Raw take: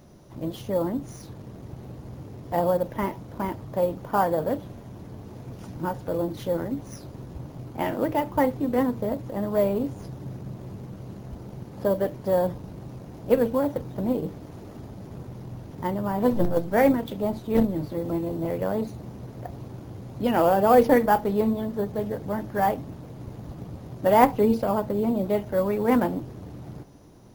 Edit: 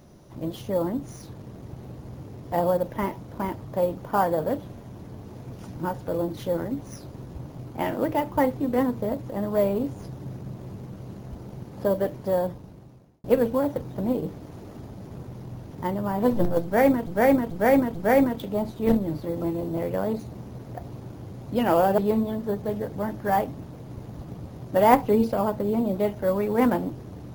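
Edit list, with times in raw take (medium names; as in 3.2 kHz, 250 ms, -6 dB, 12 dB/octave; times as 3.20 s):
12.18–13.24 s: fade out
16.63–17.07 s: loop, 4 plays
20.66–21.28 s: delete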